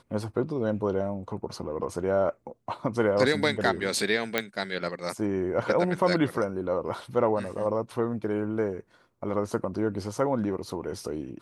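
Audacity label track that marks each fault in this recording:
4.380000	4.380000	click −10 dBFS

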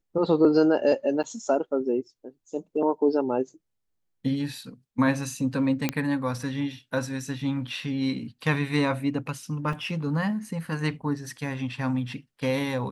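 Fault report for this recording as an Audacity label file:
1.230000	1.240000	drop-out 8 ms
5.890000	5.890000	click −10 dBFS
9.730000	9.730000	drop-out 3.2 ms

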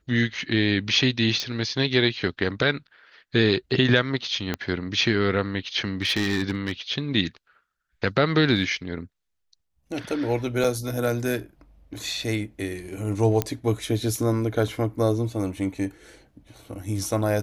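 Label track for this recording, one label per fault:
1.400000	1.400000	click −13 dBFS
4.540000	4.540000	click −11 dBFS
6.020000	6.720000	clipping −18.5 dBFS
10.640000	10.640000	drop-out 4.8 ms
13.420000	13.420000	click −8 dBFS

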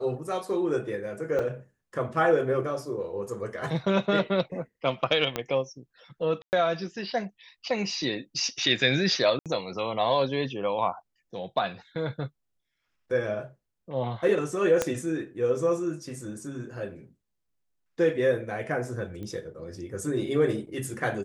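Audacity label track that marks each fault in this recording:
1.390000	1.390000	drop-out 3.7 ms
5.360000	5.360000	click −13 dBFS
6.420000	6.530000	drop-out 109 ms
9.390000	9.460000	drop-out 67 ms
14.820000	14.820000	click −10 dBFS
19.230000	19.230000	click −27 dBFS

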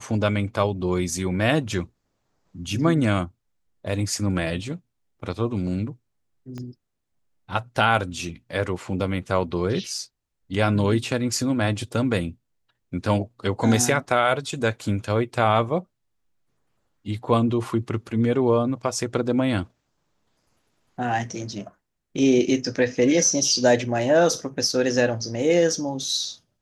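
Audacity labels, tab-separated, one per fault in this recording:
6.580000	6.580000	click −23 dBFS

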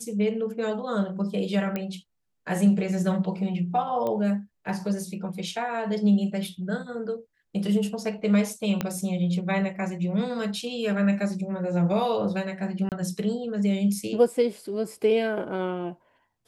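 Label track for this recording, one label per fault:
1.760000	1.760000	click −16 dBFS
4.070000	4.070000	click −18 dBFS
8.810000	8.810000	click −12 dBFS
12.890000	12.920000	drop-out 28 ms

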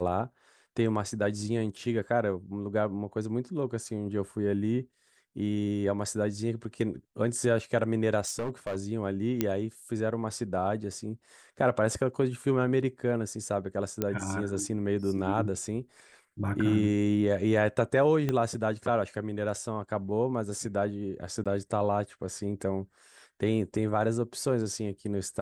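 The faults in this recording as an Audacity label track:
8.250000	8.760000	clipping −28 dBFS
9.410000	9.410000	click −12 dBFS
14.020000	14.020000	click −14 dBFS
18.290000	18.290000	click −16 dBFS
21.440000	21.460000	drop-out 16 ms

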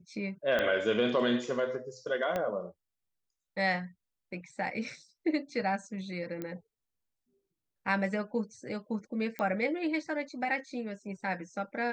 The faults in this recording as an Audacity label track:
0.590000	0.590000	click −16 dBFS
2.360000	2.360000	click −19 dBFS
6.420000	6.420000	click −24 dBFS
9.390000	9.390000	click −22 dBFS

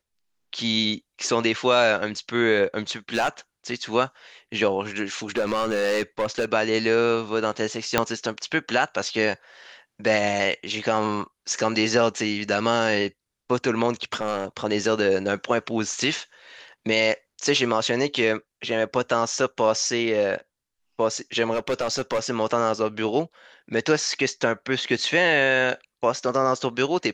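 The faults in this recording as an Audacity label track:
3.140000	3.290000	clipping −17 dBFS
5.360000	6.450000	clipping −19 dBFS
7.980000	7.980000	click −3 dBFS
14.130000	14.450000	clipping −19 dBFS
21.530000	22.200000	clipping −19 dBFS

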